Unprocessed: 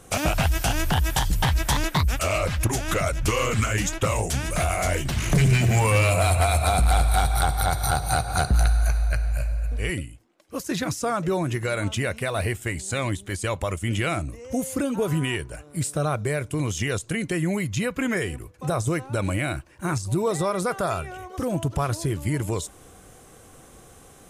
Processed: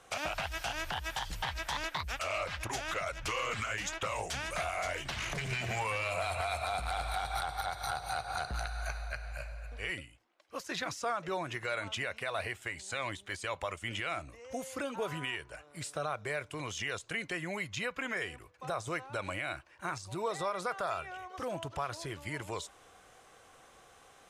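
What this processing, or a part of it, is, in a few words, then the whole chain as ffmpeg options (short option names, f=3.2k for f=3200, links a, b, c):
DJ mixer with the lows and highs turned down: -filter_complex "[0:a]acrossover=split=560 5600:gain=0.178 1 0.2[a][b][c];[a][b][c]amix=inputs=3:normalize=0,alimiter=limit=-20.5dB:level=0:latency=1:release=136,volume=-3.5dB"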